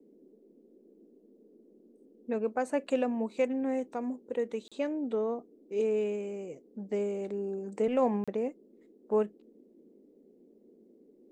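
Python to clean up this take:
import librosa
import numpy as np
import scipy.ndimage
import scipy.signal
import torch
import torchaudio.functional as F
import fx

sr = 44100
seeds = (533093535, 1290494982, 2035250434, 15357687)

y = fx.fix_interpolate(x, sr, at_s=(4.68, 8.24), length_ms=36.0)
y = fx.noise_reduce(y, sr, print_start_s=10.14, print_end_s=10.64, reduce_db=17.0)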